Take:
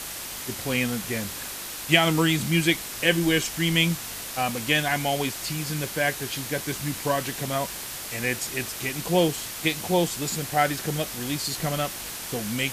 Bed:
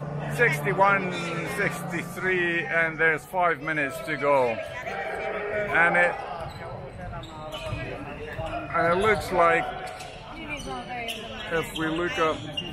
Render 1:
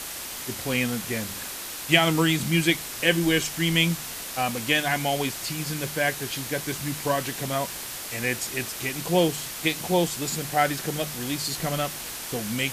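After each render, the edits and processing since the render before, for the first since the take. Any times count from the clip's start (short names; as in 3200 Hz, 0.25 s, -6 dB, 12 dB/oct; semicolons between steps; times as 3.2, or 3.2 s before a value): de-hum 50 Hz, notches 4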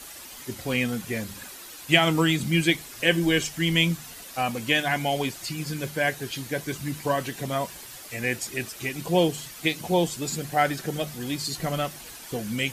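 denoiser 10 dB, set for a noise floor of -36 dBFS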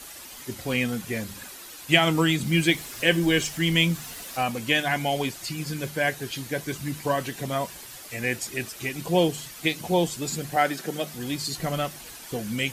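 2.46–4.44 G.711 law mismatch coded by mu; 10.56–11.14 HPF 170 Hz 24 dB/oct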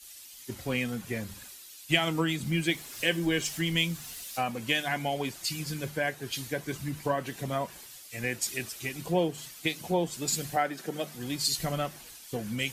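compressor 3:1, threshold -28 dBFS, peak gain reduction 11.5 dB; three-band expander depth 100%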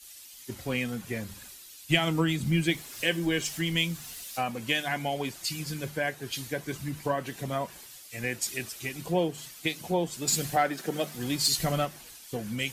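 1.44–2.81 low shelf 190 Hz +7 dB; 10.27–11.85 sample leveller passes 1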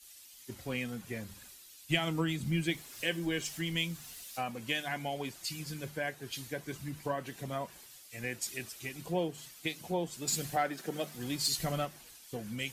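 gain -6 dB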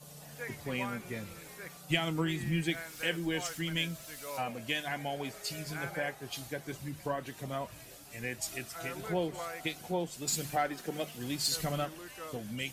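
add bed -21 dB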